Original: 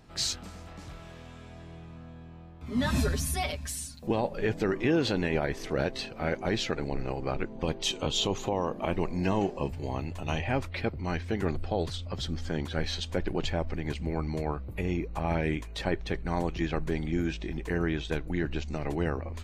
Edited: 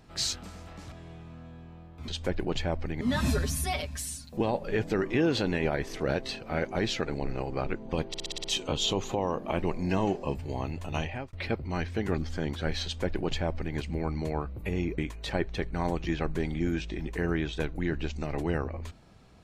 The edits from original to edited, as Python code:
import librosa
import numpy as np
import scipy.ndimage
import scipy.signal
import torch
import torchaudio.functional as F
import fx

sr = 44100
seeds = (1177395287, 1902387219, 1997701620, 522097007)

y = fx.edit(x, sr, fx.cut(start_s=0.92, length_s=0.63),
    fx.stutter(start_s=7.78, slice_s=0.06, count=7),
    fx.fade_out_span(start_s=10.31, length_s=0.36),
    fx.cut(start_s=11.52, length_s=0.78),
    fx.duplicate(start_s=12.96, length_s=0.93, to_s=2.71),
    fx.cut(start_s=15.1, length_s=0.4), tone=tone)